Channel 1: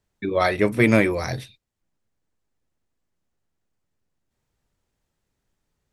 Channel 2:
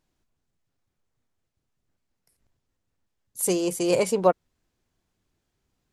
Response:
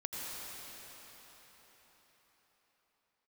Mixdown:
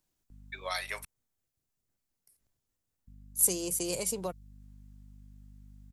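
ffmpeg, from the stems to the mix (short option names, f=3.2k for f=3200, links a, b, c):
-filter_complex "[0:a]highpass=f=760:w=0.5412,highpass=f=760:w=1.3066,aeval=exprs='val(0)+0.00501*(sin(2*PI*50*n/s)+sin(2*PI*2*50*n/s)/2+sin(2*PI*3*50*n/s)/3+sin(2*PI*4*50*n/s)/4+sin(2*PI*5*50*n/s)/5)':c=same,adelay=300,volume=-5dB,asplit=3[a][b][c];[a]atrim=end=1.05,asetpts=PTS-STARTPTS,afade=t=out:st=1.046:d=0.004:c=hsin[d];[b]atrim=start=1.05:end=3.07,asetpts=PTS-STARTPTS,volume=0[e];[c]atrim=start=3.07,asetpts=PTS-STARTPTS,afade=t=in:d=0.004:c=hsin[f];[d][e][f]concat=n=3:v=0:a=1[g];[1:a]highshelf=f=6.9k:g=6,volume=-8dB[h];[g][h]amix=inputs=2:normalize=0,highshelf=f=6.2k:g=9.5,acrossover=split=180|3000[i][j][k];[j]acompressor=threshold=-34dB:ratio=6[l];[i][l][k]amix=inputs=3:normalize=0"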